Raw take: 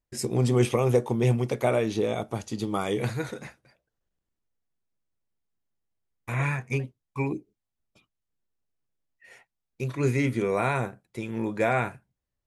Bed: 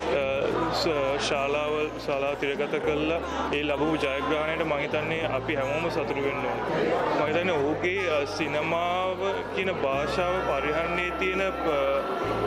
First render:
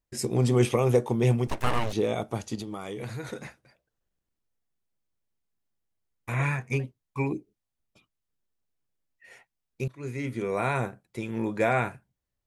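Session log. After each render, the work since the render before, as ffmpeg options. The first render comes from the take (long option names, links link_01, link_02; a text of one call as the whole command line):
ffmpeg -i in.wav -filter_complex "[0:a]asettb=1/sr,asplit=3[link_01][link_02][link_03];[link_01]atrim=end=1.474[link_04];[link_02]atrim=start=1.47:end=1.93,asetpts=PTS-STARTPTS,afade=type=in:duration=0.004:curve=qsin,afade=type=out:start_time=0.456:duration=0.004:curve=qsin,aeval=exprs='abs(val(0))':channel_layout=same[link_05];[link_03]atrim=start=1.926[link_06];[link_04][link_05]acrossfade=duration=0.004:curve1=hsin:curve2=qsin[link_07];[link_07][link_06]acrossfade=duration=0.004:curve1=qsin:curve2=hsin,asettb=1/sr,asplit=3[link_08][link_09][link_10];[link_08]atrim=end=2.554[link_11];[link_09]atrim=start=2.55:end=3.33,asetpts=PTS-STARTPTS,afade=type=in:duration=0.004:curve=qsin,afade=type=out:start_time=0.776:duration=0.004:curve=qsin,acompressor=threshold=-32dB:ratio=6:attack=3.2:release=140:knee=1:detection=peak[link_12];[link_10]atrim=start=3.326[link_13];[link_11][link_12]acrossfade=duration=0.004:curve1=hsin:curve2=qsin[link_14];[link_14][link_13]acrossfade=duration=0.004:curve1=qsin:curve2=hsin,asplit=2[link_15][link_16];[link_15]atrim=end=9.88,asetpts=PTS-STARTPTS,afade=type=out:start_time=9.876:duration=0.004:curve=hsin:silence=0.0944061[link_17];[link_16]atrim=start=9.88,asetpts=PTS-STARTPTS,afade=type=in:duration=0.96:silence=0.0944061[link_18];[link_17][link_18]concat=n=2:v=0:a=1" out.wav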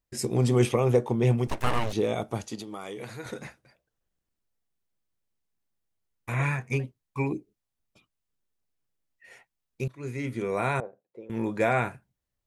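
ffmpeg -i in.wav -filter_complex "[0:a]asettb=1/sr,asplit=3[link_01][link_02][link_03];[link_01]atrim=end=0.724[link_04];[link_02]atrim=start=0.72:end=1.38,asetpts=PTS-STARTPTS,afade=type=in:duration=0.004:curve=qsin,afade=type=out:start_time=0.656:duration=0.004:curve=qsin,highshelf=frequency=5100:gain=-7.5[link_05];[link_03]atrim=start=1.376[link_06];[link_04][link_05]acrossfade=duration=0.004:curve1=hsin:curve2=qsin[link_07];[link_07][link_06]acrossfade=duration=0.004:curve1=qsin:curve2=hsin,asettb=1/sr,asplit=3[link_08][link_09][link_10];[link_08]atrim=end=2.464[link_11];[link_09]atrim=start=2.46:end=3.26,asetpts=PTS-STARTPTS,afade=type=in:duration=0.004:curve=qsin,afade=type=out:start_time=0.796:duration=0.004:curve=qsin,highpass=frequency=270:poles=1[link_12];[link_10]atrim=start=3.256[link_13];[link_11][link_12]acrossfade=duration=0.004:curve1=hsin:curve2=qsin[link_14];[link_14][link_13]acrossfade=duration=0.004:curve1=qsin:curve2=hsin,asettb=1/sr,asplit=3[link_15][link_16][link_17];[link_15]atrim=end=10.804[link_18];[link_16]atrim=start=10.8:end=11.3,asetpts=PTS-STARTPTS,afade=type=in:duration=0.004:curve=qsin,afade=type=out:start_time=0.496:duration=0.004:curve=qsin,bandpass=frequency=510:width_type=q:width=3.5[link_19];[link_17]atrim=start=11.296[link_20];[link_18][link_19]acrossfade=duration=0.004:curve1=hsin:curve2=qsin[link_21];[link_21][link_20]acrossfade=duration=0.004:curve1=qsin:curve2=hsin" out.wav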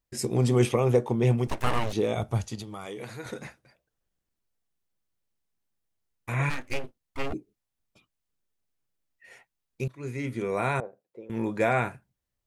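ffmpeg -i in.wav -filter_complex "[0:a]asplit=3[link_01][link_02][link_03];[link_01]afade=type=out:start_time=2.16:duration=0.02[link_04];[link_02]asubboost=boost=9:cutoff=110,afade=type=in:start_time=2.16:duration=0.02,afade=type=out:start_time=2.85:duration=0.02[link_05];[link_03]afade=type=in:start_time=2.85:duration=0.02[link_06];[link_04][link_05][link_06]amix=inputs=3:normalize=0,asplit=3[link_07][link_08][link_09];[link_07]afade=type=out:start_time=6.49:duration=0.02[link_10];[link_08]aeval=exprs='abs(val(0))':channel_layout=same,afade=type=in:start_time=6.49:duration=0.02,afade=type=out:start_time=7.32:duration=0.02[link_11];[link_09]afade=type=in:start_time=7.32:duration=0.02[link_12];[link_10][link_11][link_12]amix=inputs=3:normalize=0" out.wav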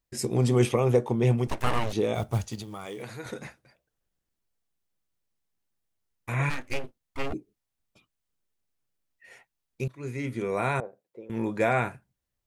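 ffmpeg -i in.wav -filter_complex "[0:a]asettb=1/sr,asplit=3[link_01][link_02][link_03];[link_01]atrim=end=2.144[link_04];[link_02]atrim=start=2.14:end=3.03,asetpts=PTS-STARTPTS,afade=type=in:duration=0.004:curve=qsin,afade=type=out:start_time=0.886:duration=0.004:curve=qsin,acrusher=bits=6:mode=log:mix=0:aa=0.000001[link_05];[link_03]atrim=start=3.026[link_06];[link_04][link_05]acrossfade=duration=0.004:curve1=hsin:curve2=qsin[link_07];[link_07][link_06]acrossfade=duration=0.004:curve1=qsin:curve2=hsin" out.wav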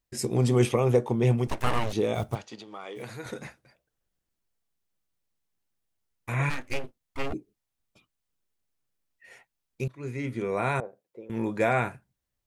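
ffmpeg -i in.wav -filter_complex "[0:a]asplit=3[link_01][link_02][link_03];[link_01]afade=type=out:start_time=2.34:duration=0.02[link_04];[link_02]highpass=330,lowpass=4000,afade=type=in:start_time=2.34:duration=0.02,afade=type=out:start_time=2.95:duration=0.02[link_05];[link_03]afade=type=in:start_time=2.95:duration=0.02[link_06];[link_04][link_05][link_06]amix=inputs=3:normalize=0,asettb=1/sr,asplit=3[link_07][link_08][link_09];[link_07]atrim=end=9.884[link_10];[link_08]atrim=start=9.88:end=10.67,asetpts=PTS-STARTPTS,afade=type=in:duration=0.004:curve=qsin,afade=type=out:start_time=0.786:duration=0.004:curve=qsin,highshelf=frequency=6300:gain=-6[link_11];[link_09]atrim=start=10.666[link_12];[link_10][link_11]acrossfade=duration=0.004:curve1=hsin:curve2=qsin[link_13];[link_13][link_12]acrossfade=duration=0.004:curve1=qsin:curve2=hsin" out.wav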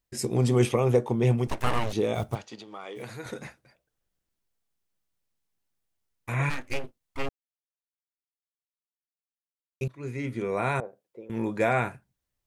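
ffmpeg -i in.wav -filter_complex "[0:a]asplit=3[link_01][link_02][link_03];[link_01]atrim=end=7.29,asetpts=PTS-STARTPTS,afade=type=out:start_time=7.286:duration=0.004:curve=hsin[link_04];[link_02]atrim=start=7.29:end=9.81,asetpts=PTS-STARTPTS,volume=0[link_05];[link_03]atrim=start=9.81,asetpts=PTS-STARTPTS,afade=type=in:duration=0.004:curve=hsin[link_06];[link_04][link_05][link_06]concat=n=3:v=0:a=1" out.wav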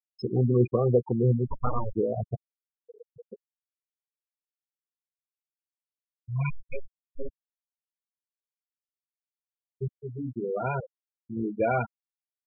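ffmpeg -i in.wav -af "afftfilt=real='re*gte(hypot(re,im),0.126)':imag='im*gte(hypot(re,im),0.126)':win_size=1024:overlap=0.75" out.wav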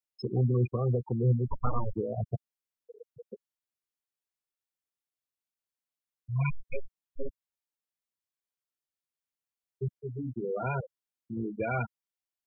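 ffmpeg -i in.wav -filter_complex "[0:a]acrossover=split=180|460|1300[link_01][link_02][link_03][link_04];[link_02]acompressor=threshold=-38dB:ratio=6[link_05];[link_03]alimiter=level_in=6dB:limit=-24dB:level=0:latency=1:release=326,volume=-6dB[link_06];[link_01][link_05][link_06][link_04]amix=inputs=4:normalize=0" out.wav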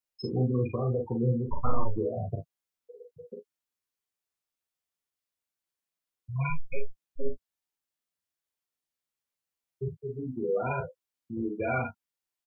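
ffmpeg -i in.wav -filter_complex "[0:a]asplit=2[link_01][link_02];[link_02]adelay=12,volume=-8.5dB[link_03];[link_01][link_03]amix=inputs=2:normalize=0,aecho=1:1:39|51|70:0.562|0.335|0.133" out.wav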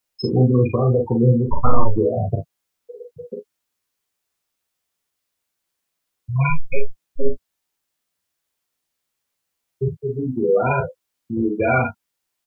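ffmpeg -i in.wav -af "volume=11.5dB,alimiter=limit=-1dB:level=0:latency=1" out.wav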